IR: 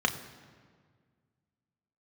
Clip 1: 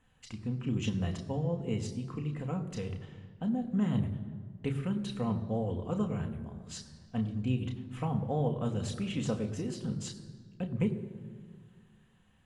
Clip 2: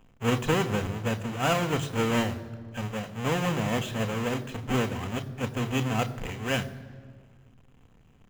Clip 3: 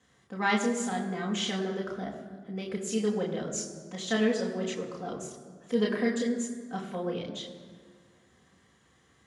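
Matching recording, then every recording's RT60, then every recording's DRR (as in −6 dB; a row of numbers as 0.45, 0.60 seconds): 1; 1.8, 1.8, 1.8 seconds; 4.5, 8.5, −3.5 decibels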